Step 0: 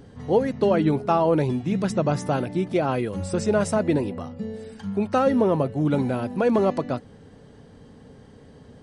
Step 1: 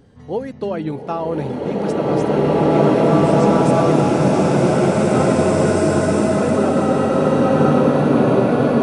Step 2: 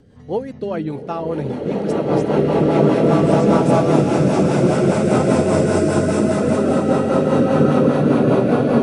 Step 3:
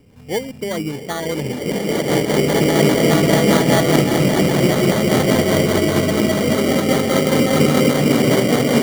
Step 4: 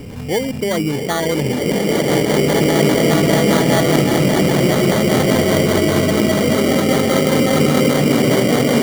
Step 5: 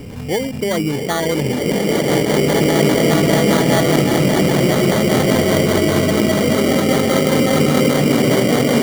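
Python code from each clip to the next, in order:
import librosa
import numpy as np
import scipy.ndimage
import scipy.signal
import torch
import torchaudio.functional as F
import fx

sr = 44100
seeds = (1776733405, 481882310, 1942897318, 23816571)

y1 = fx.rev_bloom(x, sr, seeds[0], attack_ms=2490, drr_db=-11.5)
y1 = y1 * librosa.db_to_amplitude(-3.5)
y2 = fx.rotary(y1, sr, hz=5.0)
y2 = y2 * librosa.db_to_amplitude(1.5)
y3 = fx.sample_hold(y2, sr, seeds[1], rate_hz=2600.0, jitter_pct=0)
y4 = fx.env_flatten(y3, sr, amount_pct=50)
y4 = y4 * librosa.db_to_amplitude(-1.0)
y5 = fx.end_taper(y4, sr, db_per_s=100.0)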